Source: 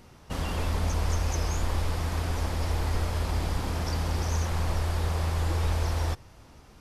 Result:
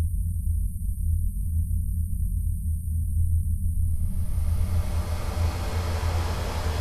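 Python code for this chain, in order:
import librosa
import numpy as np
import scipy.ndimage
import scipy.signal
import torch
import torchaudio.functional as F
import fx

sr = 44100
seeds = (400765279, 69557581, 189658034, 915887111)

y = fx.spec_erase(x, sr, start_s=2.06, length_s=0.99, low_hz=230.0, high_hz=8400.0)
y = fx.paulstretch(y, sr, seeds[0], factor=14.0, window_s=0.25, from_s=2.67)
y = F.gain(torch.from_numpy(y), 2.0).numpy()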